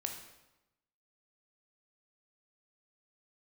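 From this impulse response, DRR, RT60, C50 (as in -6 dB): 3.0 dB, 1.0 s, 6.5 dB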